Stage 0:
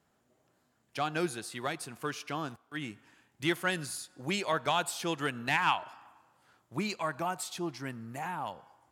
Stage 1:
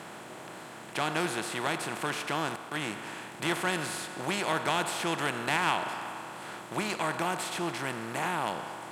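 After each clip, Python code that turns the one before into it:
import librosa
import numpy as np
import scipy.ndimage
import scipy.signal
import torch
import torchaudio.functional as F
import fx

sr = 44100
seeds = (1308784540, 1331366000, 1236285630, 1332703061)

y = fx.bin_compress(x, sr, power=0.4)
y = y * 10.0 ** (-4.0 / 20.0)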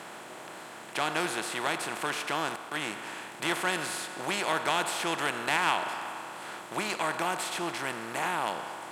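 y = fx.low_shelf(x, sr, hz=200.0, db=-11.5)
y = y * 10.0 ** (1.5 / 20.0)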